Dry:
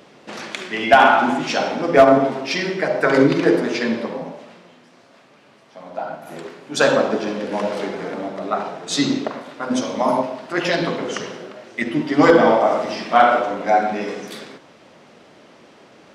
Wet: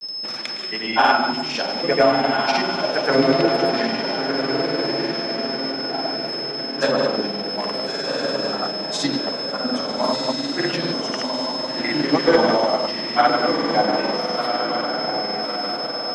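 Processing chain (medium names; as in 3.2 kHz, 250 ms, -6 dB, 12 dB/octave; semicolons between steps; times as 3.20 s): echo that smears into a reverb 1390 ms, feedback 51%, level -4 dB; whistle 5.2 kHz -23 dBFS; granulator, pitch spread up and down by 0 st; trim -2.5 dB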